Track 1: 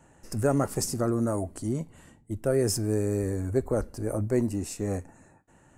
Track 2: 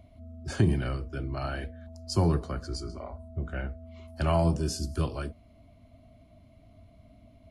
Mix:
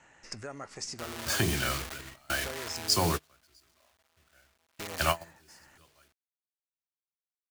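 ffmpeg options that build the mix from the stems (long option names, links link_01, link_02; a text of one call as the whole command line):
ffmpeg -i stem1.wav -i stem2.wav -filter_complex "[0:a]lowpass=frequency=6000:width=0.5412,lowpass=frequency=6000:width=1.3066,equalizer=frequency=2100:width_type=o:width=0.49:gain=5.5,acompressor=threshold=-35dB:ratio=4,volume=-2.5dB,asplit=3[link_01][link_02][link_03];[link_01]atrim=end=3.07,asetpts=PTS-STARTPTS,afade=type=out:start_time=3.066:duration=0.004:curve=hsin[link_04];[link_02]atrim=start=3.07:end=4.79,asetpts=PTS-STARTPTS,volume=0[link_05];[link_03]atrim=start=4.79,asetpts=PTS-STARTPTS,afade=type=in:duration=0.004:curve=hsin[link_06];[link_04][link_05][link_06]concat=n=3:v=0:a=1,asplit=2[link_07][link_08];[1:a]bandreject=frequency=50:width_type=h:width=6,bandreject=frequency=100:width_type=h:width=6,bandreject=frequency=150:width_type=h:width=6,bandreject=frequency=200:width_type=h:width=6,bandreject=frequency=250:width_type=h:width=6,bandreject=frequency=300:width_type=h:width=6,bandreject=frequency=350:width_type=h:width=6,bandreject=frequency=400:width_type=h:width=6,acrusher=bits=6:mix=0:aa=0.000001,adelay=800,volume=2dB[link_09];[link_08]apad=whole_len=366281[link_10];[link_09][link_10]sidechaingate=range=-31dB:threshold=-52dB:ratio=16:detection=peak[link_11];[link_07][link_11]amix=inputs=2:normalize=0,tiltshelf=frequency=700:gain=-9" out.wav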